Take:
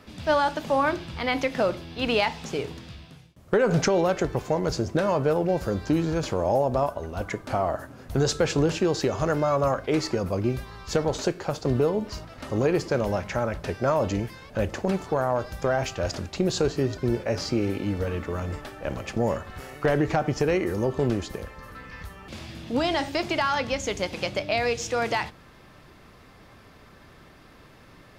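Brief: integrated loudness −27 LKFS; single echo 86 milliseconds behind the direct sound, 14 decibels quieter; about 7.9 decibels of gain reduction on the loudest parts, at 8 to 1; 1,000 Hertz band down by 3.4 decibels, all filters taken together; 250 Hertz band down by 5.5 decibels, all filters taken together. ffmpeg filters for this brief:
ffmpeg -i in.wav -af "equalizer=frequency=250:width_type=o:gain=-8,equalizer=frequency=1000:width_type=o:gain=-4,acompressor=threshold=-29dB:ratio=8,aecho=1:1:86:0.2,volume=7.5dB" out.wav

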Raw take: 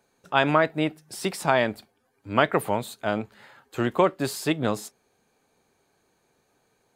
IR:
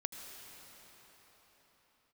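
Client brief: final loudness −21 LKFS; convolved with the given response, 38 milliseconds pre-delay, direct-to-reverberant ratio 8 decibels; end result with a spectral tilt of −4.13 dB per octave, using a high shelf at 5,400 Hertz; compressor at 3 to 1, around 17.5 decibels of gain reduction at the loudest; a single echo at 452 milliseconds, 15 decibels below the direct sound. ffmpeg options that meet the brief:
-filter_complex "[0:a]highshelf=frequency=5400:gain=8,acompressor=threshold=-39dB:ratio=3,aecho=1:1:452:0.178,asplit=2[link_01][link_02];[1:a]atrim=start_sample=2205,adelay=38[link_03];[link_02][link_03]afir=irnorm=-1:irlink=0,volume=-7.5dB[link_04];[link_01][link_04]amix=inputs=2:normalize=0,volume=18dB"

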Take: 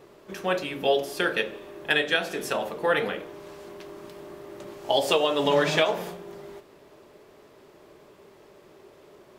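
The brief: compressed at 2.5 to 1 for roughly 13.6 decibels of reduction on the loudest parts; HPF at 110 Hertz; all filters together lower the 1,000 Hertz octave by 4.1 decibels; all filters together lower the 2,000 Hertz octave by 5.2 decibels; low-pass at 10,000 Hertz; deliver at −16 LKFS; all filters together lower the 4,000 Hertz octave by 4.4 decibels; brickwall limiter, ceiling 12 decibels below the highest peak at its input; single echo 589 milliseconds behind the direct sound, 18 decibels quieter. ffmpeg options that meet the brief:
ffmpeg -i in.wav -af "highpass=110,lowpass=10000,equalizer=frequency=1000:width_type=o:gain=-4.5,equalizer=frequency=2000:width_type=o:gain=-4.5,equalizer=frequency=4000:width_type=o:gain=-3.5,acompressor=threshold=-41dB:ratio=2.5,alimiter=level_in=9.5dB:limit=-24dB:level=0:latency=1,volume=-9.5dB,aecho=1:1:589:0.126,volume=29dB" out.wav

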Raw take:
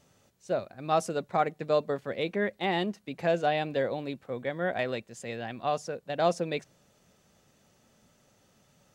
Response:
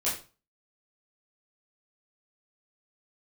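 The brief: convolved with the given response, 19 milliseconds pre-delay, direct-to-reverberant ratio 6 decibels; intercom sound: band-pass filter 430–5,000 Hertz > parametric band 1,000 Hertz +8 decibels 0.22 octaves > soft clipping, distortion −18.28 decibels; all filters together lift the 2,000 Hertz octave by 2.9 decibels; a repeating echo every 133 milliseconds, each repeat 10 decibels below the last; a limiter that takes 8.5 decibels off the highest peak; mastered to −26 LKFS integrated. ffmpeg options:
-filter_complex "[0:a]equalizer=frequency=2000:width_type=o:gain=3.5,alimiter=limit=-20.5dB:level=0:latency=1,aecho=1:1:133|266|399|532:0.316|0.101|0.0324|0.0104,asplit=2[link_01][link_02];[1:a]atrim=start_sample=2205,adelay=19[link_03];[link_02][link_03]afir=irnorm=-1:irlink=0,volume=-13.5dB[link_04];[link_01][link_04]amix=inputs=2:normalize=0,highpass=430,lowpass=5000,equalizer=frequency=1000:width_type=o:width=0.22:gain=8,asoftclip=threshold=-23.5dB,volume=8.5dB"

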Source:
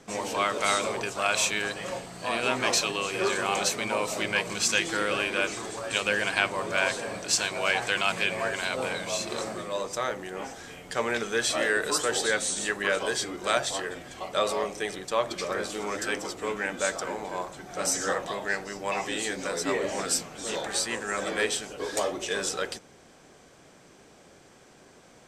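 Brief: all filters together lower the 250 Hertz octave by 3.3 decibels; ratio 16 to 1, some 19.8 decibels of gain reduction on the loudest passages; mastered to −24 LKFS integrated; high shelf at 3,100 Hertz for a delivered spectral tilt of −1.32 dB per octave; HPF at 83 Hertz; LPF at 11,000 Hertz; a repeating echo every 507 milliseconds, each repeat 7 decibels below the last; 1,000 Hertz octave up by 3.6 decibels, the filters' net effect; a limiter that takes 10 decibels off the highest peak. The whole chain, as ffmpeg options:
ffmpeg -i in.wav -af "highpass=83,lowpass=11000,equalizer=frequency=250:width_type=o:gain=-5,equalizer=frequency=1000:width_type=o:gain=4.5,highshelf=frequency=3100:gain=3.5,acompressor=threshold=-38dB:ratio=16,alimiter=level_in=8dB:limit=-24dB:level=0:latency=1,volume=-8dB,aecho=1:1:507|1014|1521|2028|2535:0.447|0.201|0.0905|0.0407|0.0183,volume=18.5dB" out.wav

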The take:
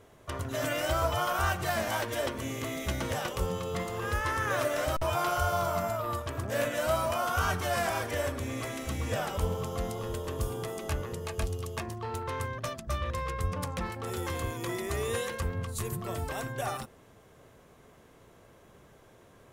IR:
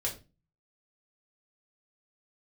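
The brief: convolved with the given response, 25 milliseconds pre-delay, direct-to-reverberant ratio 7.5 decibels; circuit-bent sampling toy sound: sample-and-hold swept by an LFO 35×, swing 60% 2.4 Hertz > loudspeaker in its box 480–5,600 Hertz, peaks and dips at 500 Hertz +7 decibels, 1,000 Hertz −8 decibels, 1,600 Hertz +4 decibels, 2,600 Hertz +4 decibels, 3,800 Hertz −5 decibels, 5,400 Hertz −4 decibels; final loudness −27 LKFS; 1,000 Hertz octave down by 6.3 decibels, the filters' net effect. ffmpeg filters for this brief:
-filter_complex "[0:a]equalizer=frequency=1000:width_type=o:gain=-7,asplit=2[link_01][link_02];[1:a]atrim=start_sample=2205,adelay=25[link_03];[link_02][link_03]afir=irnorm=-1:irlink=0,volume=-11dB[link_04];[link_01][link_04]amix=inputs=2:normalize=0,acrusher=samples=35:mix=1:aa=0.000001:lfo=1:lforange=21:lforate=2.4,highpass=480,equalizer=frequency=500:width_type=q:width=4:gain=7,equalizer=frequency=1000:width_type=q:width=4:gain=-8,equalizer=frequency=1600:width_type=q:width=4:gain=4,equalizer=frequency=2600:width_type=q:width=4:gain=4,equalizer=frequency=3800:width_type=q:width=4:gain=-5,equalizer=frequency=5400:width_type=q:width=4:gain=-4,lowpass=frequency=5600:width=0.5412,lowpass=frequency=5600:width=1.3066,volume=9dB"

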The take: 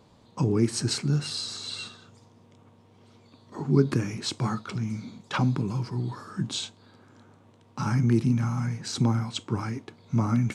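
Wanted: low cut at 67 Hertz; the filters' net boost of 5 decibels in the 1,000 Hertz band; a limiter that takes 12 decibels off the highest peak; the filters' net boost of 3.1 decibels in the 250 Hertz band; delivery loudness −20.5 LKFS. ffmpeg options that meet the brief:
ffmpeg -i in.wav -af "highpass=67,equalizer=frequency=250:width_type=o:gain=3.5,equalizer=frequency=1000:width_type=o:gain=6,volume=9dB,alimiter=limit=-9dB:level=0:latency=1" out.wav

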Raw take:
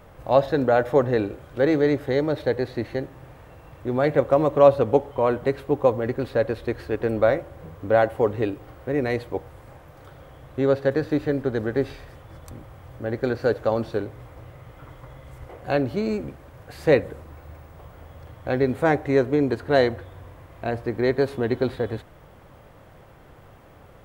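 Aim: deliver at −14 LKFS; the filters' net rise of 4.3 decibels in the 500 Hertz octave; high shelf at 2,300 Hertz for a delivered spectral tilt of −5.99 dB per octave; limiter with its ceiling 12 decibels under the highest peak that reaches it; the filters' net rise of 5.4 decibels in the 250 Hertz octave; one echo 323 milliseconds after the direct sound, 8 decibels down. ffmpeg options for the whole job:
ffmpeg -i in.wav -af "equalizer=frequency=250:width_type=o:gain=5.5,equalizer=frequency=500:width_type=o:gain=4,highshelf=frequency=2300:gain=-8,alimiter=limit=-11.5dB:level=0:latency=1,aecho=1:1:323:0.398,volume=8.5dB" out.wav

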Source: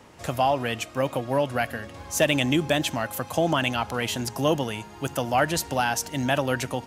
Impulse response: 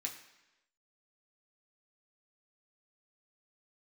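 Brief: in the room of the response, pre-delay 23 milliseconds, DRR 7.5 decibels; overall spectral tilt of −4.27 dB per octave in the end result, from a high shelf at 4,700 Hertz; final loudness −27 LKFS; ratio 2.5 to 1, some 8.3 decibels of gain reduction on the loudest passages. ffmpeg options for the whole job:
-filter_complex "[0:a]highshelf=frequency=4700:gain=-4,acompressor=threshold=-30dB:ratio=2.5,asplit=2[link_01][link_02];[1:a]atrim=start_sample=2205,adelay=23[link_03];[link_02][link_03]afir=irnorm=-1:irlink=0,volume=-6.5dB[link_04];[link_01][link_04]amix=inputs=2:normalize=0,volume=5dB"

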